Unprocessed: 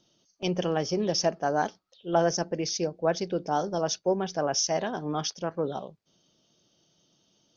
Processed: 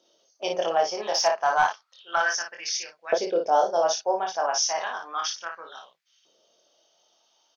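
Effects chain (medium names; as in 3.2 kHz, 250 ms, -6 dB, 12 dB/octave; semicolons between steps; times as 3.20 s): early reflections 24 ms -3.5 dB, 56 ms -5.5 dB; LFO high-pass saw up 0.32 Hz 480–2100 Hz; 0.97–2.33 s: overdrive pedal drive 9 dB, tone 4.9 kHz, clips at -10 dBFS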